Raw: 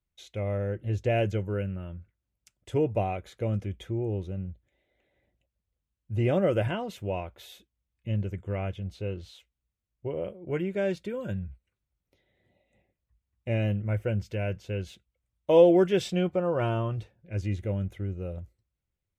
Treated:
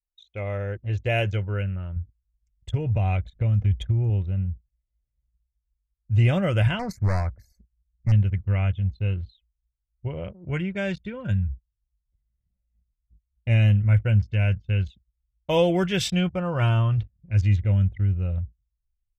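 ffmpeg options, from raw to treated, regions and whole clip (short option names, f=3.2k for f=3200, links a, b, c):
-filter_complex "[0:a]asettb=1/sr,asplit=3[a][b][c];[a]atrim=end=1.964[d];[b]atrim=start=1.96:end=4.1,asetpts=PTS-STARTPTS,afade=t=in:d=0.004:c=qsin,afade=t=out:st=2.136:d=0.004:c=qsin,lowshelf=f=210:g=8,acompressor=threshold=-24dB:ratio=10:attack=3.2:release=140:knee=1:detection=peak[e];[c]atrim=start=4.096[f];[d][e]acrossfade=d=0.004:c1=hsin:c2=qsin[g];[g][f]acrossfade=d=0.004:c1=qsin:c2=hsin,asettb=1/sr,asplit=3[h][i][j];[h]atrim=end=6.794[k];[i]atrim=start=6.79:end=8.12,asetpts=PTS-STARTPTS,afade=t=in:d=0.004:c=qsin,afade=t=out:st=1.326:d=0.004:c=qsin,acontrast=32,asoftclip=type=hard:threshold=-25.5dB,asuperstop=centerf=3100:order=8:qfactor=1.4[l];[j]atrim=start=8.116[m];[k][l]acrossfade=d=0.004:c1=hsin:c2=qsin[n];[n][m]acrossfade=d=0.004:c1=qsin:c2=hsin,asubboost=boost=8.5:cutoff=130,anlmdn=0.251,tiltshelf=f=870:g=-6.5,volume=3.5dB"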